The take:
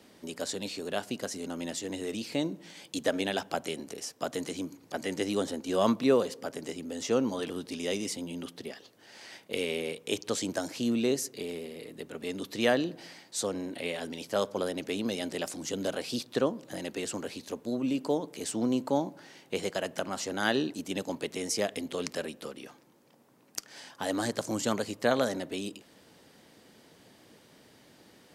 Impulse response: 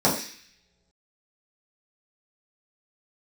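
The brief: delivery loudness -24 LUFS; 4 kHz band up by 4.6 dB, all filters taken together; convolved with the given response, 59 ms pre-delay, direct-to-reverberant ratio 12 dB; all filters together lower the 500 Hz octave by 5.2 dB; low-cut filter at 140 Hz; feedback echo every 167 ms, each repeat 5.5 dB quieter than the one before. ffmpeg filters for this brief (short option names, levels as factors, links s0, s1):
-filter_complex "[0:a]highpass=140,equalizer=f=500:t=o:g=-6.5,equalizer=f=4000:t=o:g=6,aecho=1:1:167|334|501|668|835|1002|1169:0.531|0.281|0.149|0.079|0.0419|0.0222|0.0118,asplit=2[s0][s1];[1:a]atrim=start_sample=2205,adelay=59[s2];[s1][s2]afir=irnorm=-1:irlink=0,volume=0.0355[s3];[s0][s3]amix=inputs=2:normalize=0,volume=2.51"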